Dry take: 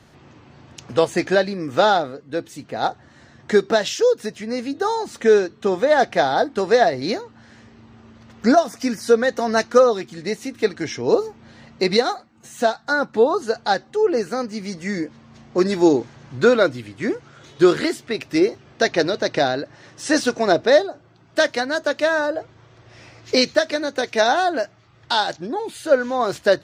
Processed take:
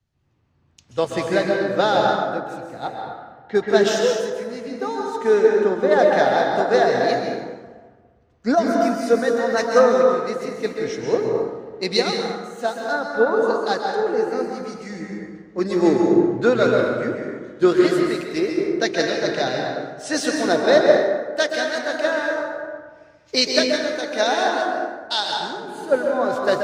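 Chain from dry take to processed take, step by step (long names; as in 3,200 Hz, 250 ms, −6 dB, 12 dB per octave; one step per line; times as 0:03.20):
0:02.78–0:03.55: low-pass filter 4,200 Hz 24 dB per octave
dense smooth reverb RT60 2.3 s, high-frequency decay 0.45×, pre-delay 120 ms, DRR −1.5 dB
multiband upward and downward expander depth 70%
level −4 dB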